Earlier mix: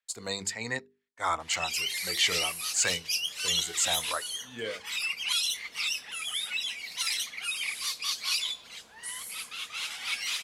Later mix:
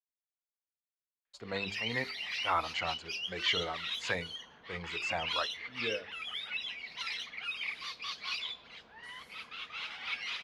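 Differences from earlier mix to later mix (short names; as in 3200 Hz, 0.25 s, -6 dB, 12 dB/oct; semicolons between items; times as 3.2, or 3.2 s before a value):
speech: entry +1.25 s; master: add air absorption 290 m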